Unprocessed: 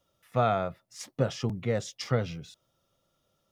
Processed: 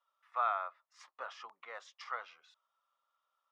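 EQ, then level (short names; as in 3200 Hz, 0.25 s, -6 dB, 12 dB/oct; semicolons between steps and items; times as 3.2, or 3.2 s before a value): ladder high-pass 970 Hz, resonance 60%; tape spacing loss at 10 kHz 21 dB; high shelf 8300 Hz -3.5 dB; +5.0 dB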